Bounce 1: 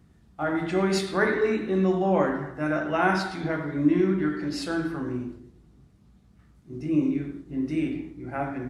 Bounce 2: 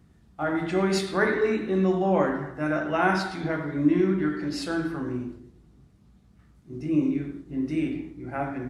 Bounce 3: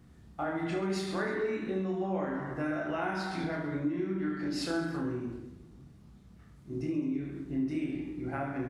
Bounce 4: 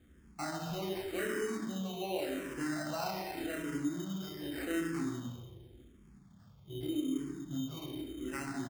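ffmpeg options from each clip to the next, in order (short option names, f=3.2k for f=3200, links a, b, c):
-af anull
-filter_complex "[0:a]acompressor=threshold=-33dB:ratio=6,asplit=2[a][b];[b]aecho=0:1:30|72|130.8|213.1|328.4:0.631|0.398|0.251|0.158|0.1[c];[a][c]amix=inputs=2:normalize=0"
-filter_complex "[0:a]acrusher=samples=13:mix=1:aa=0.000001,asplit=2[a][b];[b]adelay=139,lowpass=f=2k:p=1,volume=-10dB,asplit=2[c][d];[d]adelay=139,lowpass=f=2k:p=1,volume=0.52,asplit=2[e][f];[f]adelay=139,lowpass=f=2k:p=1,volume=0.52,asplit=2[g][h];[h]adelay=139,lowpass=f=2k:p=1,volume=0.52,asplit=2[i][j];[j]adelay=139,lowpass=f=2k:p=1,volume=0.52,asplit=2[k][l];[l]adelay=139,lowpass=f=2k:p=1,volume=0.52[m];[a][c][e][g][i][k][m]amix=inputs=7:normalize=0,asplit=2[n][o];[o]afreqshift=-0.86[p];[n][p]amix=inputs=2:normalize=1,volume=-1.5dB"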